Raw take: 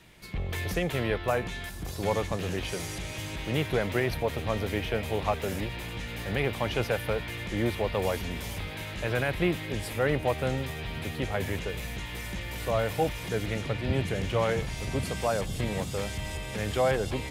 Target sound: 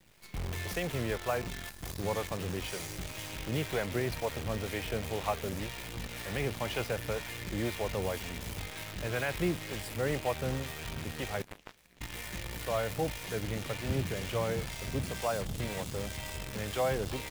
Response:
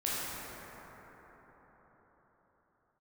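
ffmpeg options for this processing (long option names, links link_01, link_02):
-filter_complex "[0:a]acrossover=split=470[link_01][link_02];[link_01]aeval=exprs='val(0)*(1-0.5/2+0.5/2*cos(2*PI*2*n/s))':channel_layout=same[link_03];[link_02]aeval=exprs='val(0)*(1-0.5/2-0.5/2*cos(2*PI*2*n/s))':channel_layout=same[link_04];[link_03][link_04]amix=inputs=2:normalize=0,acrusher=bits=7:dc=4:mix=0:aa=0.000001,asettb=1/sr,asplit=3[link_05][link_06][link_07];[link_05]atrim=end=11.424[link_08];[link_06]atrim=start=11.42:end=12.01,asetpts=PTS-STARTPTS,afade=type=in:duration=0.004:curve=qsin,afade=type=out:start_time=0.586:duration=0.004:curve=qsin,aeval=exprs='0.1*(cos(1*acos(clip(val(0)/0.1,-1,1)))-cos(1*PI/2))+0.0398*(cos(2*acos(clip(val(0)/0.1,-1,1)))-cos(2*PI/2))+0.0355*(cos(3*acos(clip(val(0)/0.1,-1,1)))-cos(3*PI/2))+0.000708*(cos(7*acos(clip(val(0)/0.1,-1,1)))-cos(7*PI/2))+0.00251*(cos(8*acos(clip(val(0)/0.1,-1,1)))-cos(8*PI/2))':channel_layout=same[link_09];[link_07]atrim=start=12.006[link_10];[link_08][link_09]acrossfade=duration=0.004:curve1=hsin:curve2=qsin[link_11];[link_11][link_10]acrossfade=duration=0.004:curve1=qsin:curve2=hsin,volume=-3dB"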